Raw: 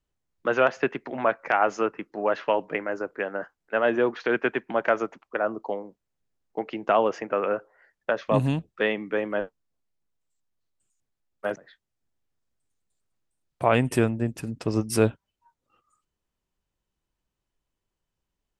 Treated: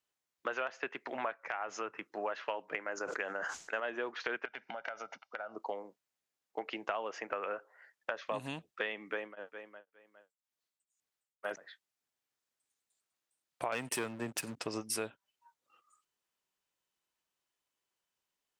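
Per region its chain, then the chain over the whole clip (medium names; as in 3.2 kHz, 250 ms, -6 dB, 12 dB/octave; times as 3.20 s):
1.37–2.15 s: peaking EQ 120 Hz +8 dB 0.92 oct + band-stop 4.6 kHz, Q 16 + compression 1.5:1, threshold -37 dBFS
2.95–3.80 s: resonant low-pass 6.7 kHz, resonance Q 4 + bass shelf 78 Hz +10.5 dB + decay stretcher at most 54 dB/s
4.45–5.56 s: resonant high shelf 6.8 kHz -7.5 dB, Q 3 + comb 1.4 ms, depth 62% + compression 12:1, threshold -34 dBFS
9.11–11.52 s: feedback delay 409 ms, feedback 22%, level -16.5 dB + tremolo of two beating tones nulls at 2 Hz
13.72–14.60 s: waveshaping leveller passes 2 + upward compressor, threshold -19 dBFS + three bands expanded up and down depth 40%
whole clip: high-pass 1.1 kHz 6 dB/octave; compression 6:1, threshold -35 dBFS; trim +1.5 dB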